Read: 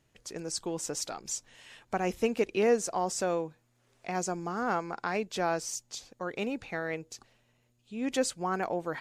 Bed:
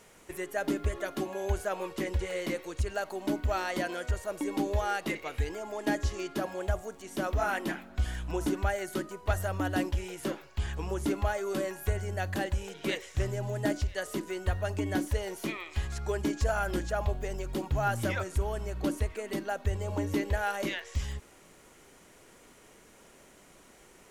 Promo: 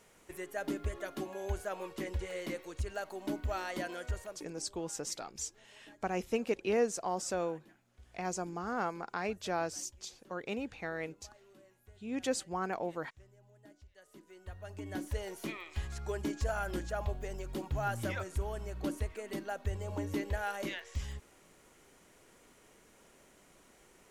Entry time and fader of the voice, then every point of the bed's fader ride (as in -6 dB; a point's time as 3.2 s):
4.10 s, -4.5 dB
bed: 4.22 s -6 dB
4.62 s -29 dB
13.76 s -29 dB
15.2 s -5.5 dB